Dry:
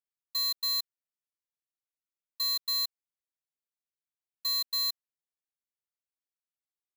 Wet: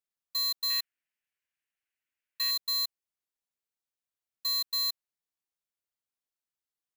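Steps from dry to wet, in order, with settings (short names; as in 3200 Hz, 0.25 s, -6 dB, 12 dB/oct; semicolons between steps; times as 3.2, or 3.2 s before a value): 0.7–2.51 band shelf 2100 Hz +12 dB 1.2 oct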